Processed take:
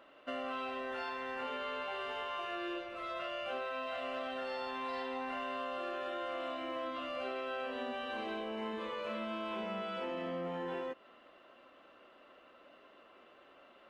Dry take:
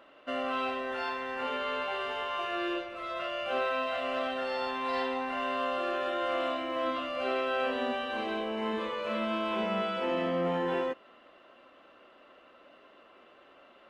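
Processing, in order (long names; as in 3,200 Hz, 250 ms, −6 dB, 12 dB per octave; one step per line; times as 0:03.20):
downward compressor, threshold −33 dBFS, peak gain reduction 7 dB
level −3 dB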